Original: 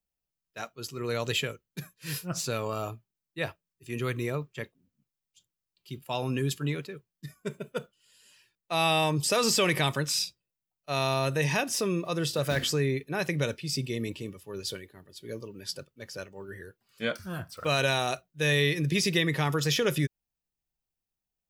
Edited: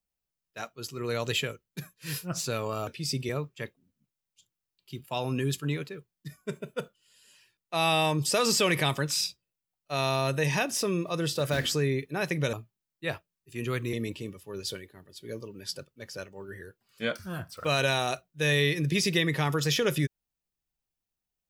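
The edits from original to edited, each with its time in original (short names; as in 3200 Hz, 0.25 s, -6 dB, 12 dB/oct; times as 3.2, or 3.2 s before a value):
2.87–4.27 swap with 13.51–13.93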